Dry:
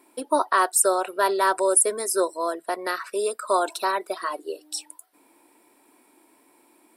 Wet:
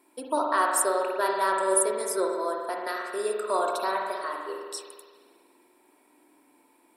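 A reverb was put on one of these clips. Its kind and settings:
spring reverb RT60 1.7 s, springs 47 ms, chirp 30 ms, DRR 0 dB
level −6 dB

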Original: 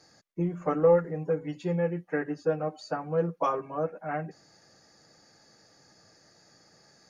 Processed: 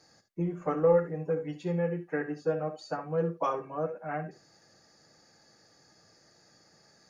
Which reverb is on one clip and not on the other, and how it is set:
reverb whose tail is shaped and stops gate 90 ms rising, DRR 10 dB
level −2.5 dB

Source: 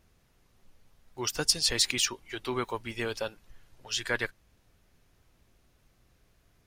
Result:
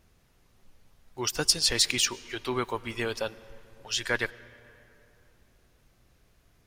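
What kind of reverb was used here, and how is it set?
comb and all-pass reverb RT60 3.1 s, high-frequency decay 0.55×, pre-delay 70 ms, DRR 19 dB
level +2 dB

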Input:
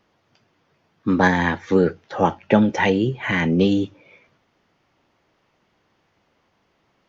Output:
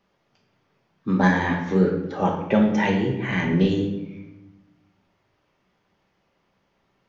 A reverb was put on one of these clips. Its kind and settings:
rectangular room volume 400 cubic metres, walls mixed, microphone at 1.2 metres
level −6.5 dB

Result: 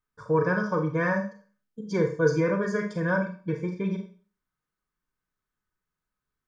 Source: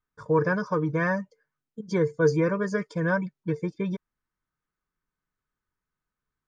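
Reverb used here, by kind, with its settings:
four-comb reverb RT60 0.4 s, combs from 30 ms, DRR 4 dB
level −1.5 dB

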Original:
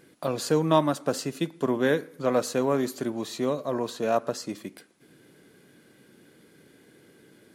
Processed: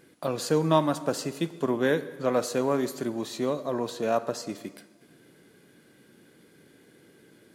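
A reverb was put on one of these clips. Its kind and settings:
dense smooth reverb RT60 1.5 s, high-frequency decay 0.9×, DRR 13.5 dB
level −1 dB

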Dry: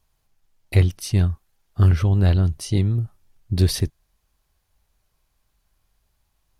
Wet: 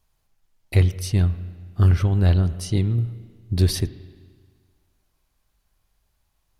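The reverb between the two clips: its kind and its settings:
spring reverb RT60 1.7 s, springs 34/43 ms, chirp 45 ms, DRR 14 dB
level −1 dB

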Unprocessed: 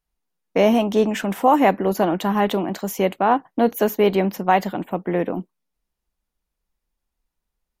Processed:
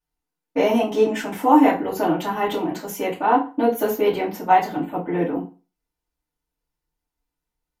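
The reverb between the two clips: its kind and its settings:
feedback delay network reverb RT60 0.33 s, low-frequency decay 1×, high-frequency decay 0.8×, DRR −9.5 dB
level −11 dB

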